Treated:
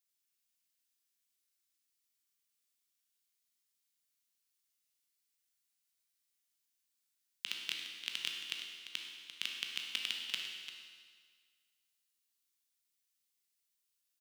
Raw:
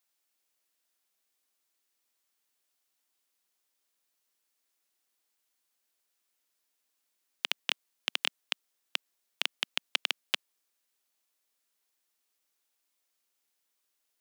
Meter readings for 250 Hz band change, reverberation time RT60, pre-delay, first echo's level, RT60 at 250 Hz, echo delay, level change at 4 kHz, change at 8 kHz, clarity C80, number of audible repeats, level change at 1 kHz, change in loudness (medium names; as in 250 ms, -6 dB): -9.0 dB, 1.7 s, 13 ms, -11.0 dB, 1.7 s, 345 ms, -5.0 dB, -3.5 dB, 3.0 dB, 1, -13.5 dB, -6.0 dB